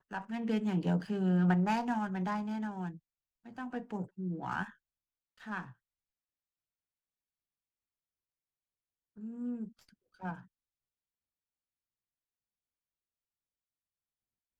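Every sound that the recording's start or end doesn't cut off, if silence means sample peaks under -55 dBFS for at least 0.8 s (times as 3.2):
9.17–10.46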